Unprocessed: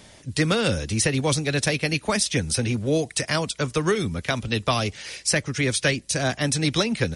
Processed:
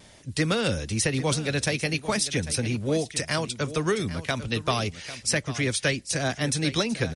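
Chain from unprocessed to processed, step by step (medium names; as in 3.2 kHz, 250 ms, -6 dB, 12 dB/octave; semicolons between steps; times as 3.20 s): vibrato 0.5 Hz 8.9 cents; delay 797 ms -14 dB; trim -3 dB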